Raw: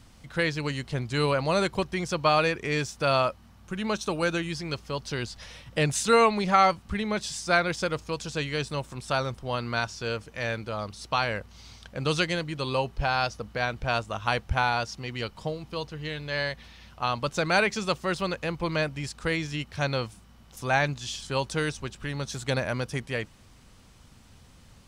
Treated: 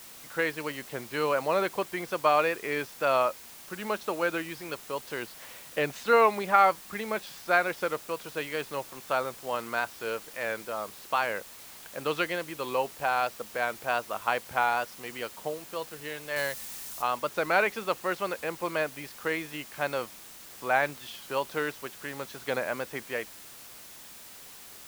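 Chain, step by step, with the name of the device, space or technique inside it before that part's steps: wax cylinder (band-pass 350–2400 Hz; wow and flutter; white noise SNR 17 dB); 16.36–17.02 s: tone controls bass +5 dB, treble +8 dB

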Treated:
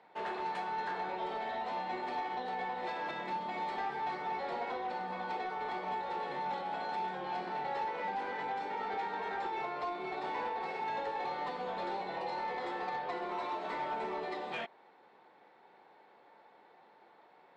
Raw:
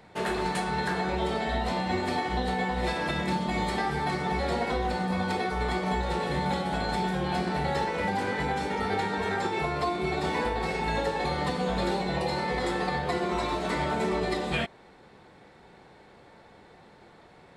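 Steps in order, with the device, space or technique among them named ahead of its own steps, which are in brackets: intercom (band-pass 350–3500 Hz; peaking EQ 880 Hz +6 dB 0.53 oct; saturation -20.5 dBFS, distortion -20 dB); trim -8.5 dB

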